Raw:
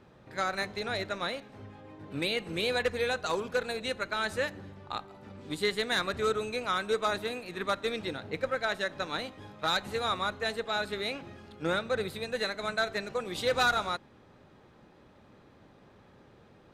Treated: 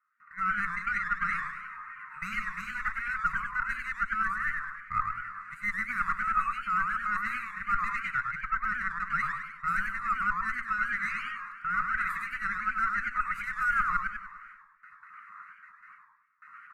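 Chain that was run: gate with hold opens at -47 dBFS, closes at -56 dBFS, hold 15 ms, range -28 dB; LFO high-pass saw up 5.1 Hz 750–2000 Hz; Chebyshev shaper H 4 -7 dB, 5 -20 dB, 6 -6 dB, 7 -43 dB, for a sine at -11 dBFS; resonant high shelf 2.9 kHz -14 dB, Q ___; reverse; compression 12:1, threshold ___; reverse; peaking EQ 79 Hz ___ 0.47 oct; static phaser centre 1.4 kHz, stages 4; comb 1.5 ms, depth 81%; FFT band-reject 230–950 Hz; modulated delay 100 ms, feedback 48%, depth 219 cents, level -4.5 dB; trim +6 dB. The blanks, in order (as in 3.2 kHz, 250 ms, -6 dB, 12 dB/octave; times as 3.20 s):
1.5, -35 dBFS, -12.5 dB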